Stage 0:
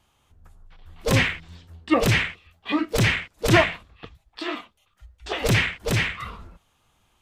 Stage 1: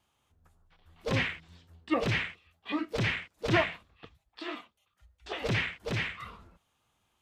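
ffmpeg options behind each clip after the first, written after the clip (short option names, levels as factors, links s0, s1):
-filter_complex "[0:a]acrossover=split=5300[s0][s1];[s1]acompressor=threshold=0.00316:ratio=4:attack=1:release=60[s2];[s0][s2]amix=inputs=2:normalize=0,highpass=f=83:p=1,volume=0.376"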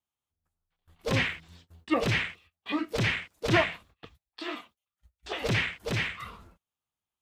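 -af "agate=range=0.0794:threshold=0.00141:ratio=16:detection=peak,highshelf=f=7500:g=8.5,volume=1.26"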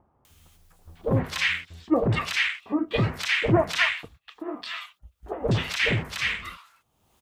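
-filter_complex "[0:a]acompressor=mode=upward:threshold=0.00708:ratio=2.5,acrossover=split=1100[s0][s1];[s1]adelay=250[s2];[s0][s2]amix=inputs=2:normalize=0,volume=1.88"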